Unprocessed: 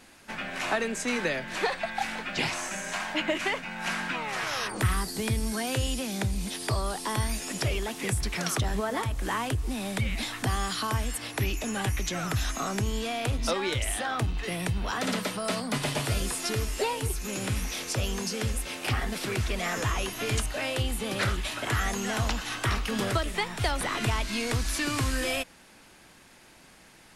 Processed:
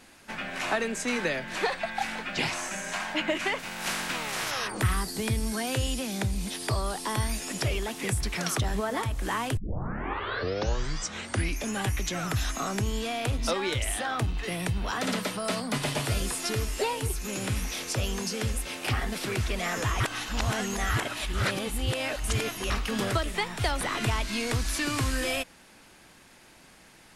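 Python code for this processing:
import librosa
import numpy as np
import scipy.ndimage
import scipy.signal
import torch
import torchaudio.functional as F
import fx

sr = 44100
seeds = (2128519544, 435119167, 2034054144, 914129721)

y = fx.spec_flatten(x, sr, power=0.53, at=(3.58, 4.5), fade=0.02)
y = fx.edit(y, sr, fx.tape_start(start_s=9.57, length_s=2.17),
    fx.reverse_span(start_s=20.0, length_s=2.7), tone=tone)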